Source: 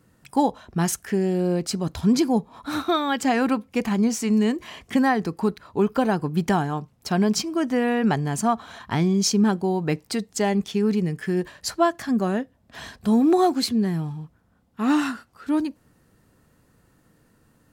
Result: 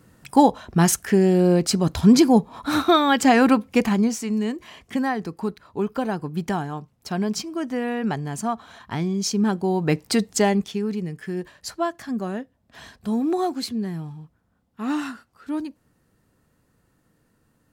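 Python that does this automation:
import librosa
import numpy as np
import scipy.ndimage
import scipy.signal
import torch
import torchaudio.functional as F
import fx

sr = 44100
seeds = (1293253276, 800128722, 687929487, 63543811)

y = fx.gain(x, sr, db=fx.line((3.77, 5.5), (4.28, -4.0), (9.22, -4.0), (10.27, 7.0), (10.87, -5.0)))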